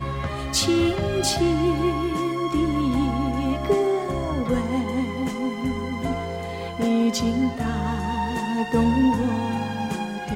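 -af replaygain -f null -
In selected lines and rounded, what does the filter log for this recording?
track_gain = +4.2 dB
track_peak = 0.239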